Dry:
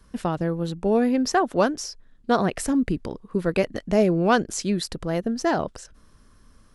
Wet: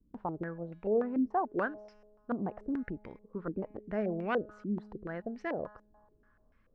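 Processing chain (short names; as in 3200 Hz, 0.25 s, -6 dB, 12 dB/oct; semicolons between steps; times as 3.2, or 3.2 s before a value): resonator 210 Hz, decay 1.6 s, mix 60%; stepped low-pass 6.9 Hz 290–2200 Hz; gain -8 dB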